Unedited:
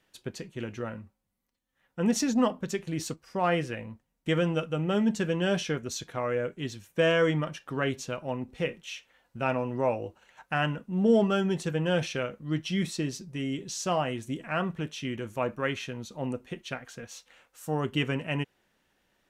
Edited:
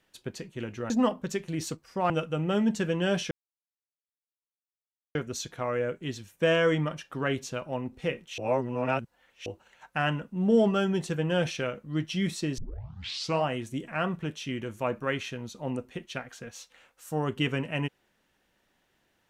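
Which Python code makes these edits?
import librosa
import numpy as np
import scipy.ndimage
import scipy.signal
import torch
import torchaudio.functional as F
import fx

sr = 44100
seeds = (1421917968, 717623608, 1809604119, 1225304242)

y = fx.edit(x, sr, fx.cut(start_s=0.9, length_s=1.39),
    fx.cut(start_s=3.49, length_s=1.01),
    fx.insert_silence(at_s=5.71, length_s=1.84),
    fx.reverse_span(start_s=8.94, length_s=1.08),
    fx.tape_start(start_s=13.14, length_s=0.85), tone=tone)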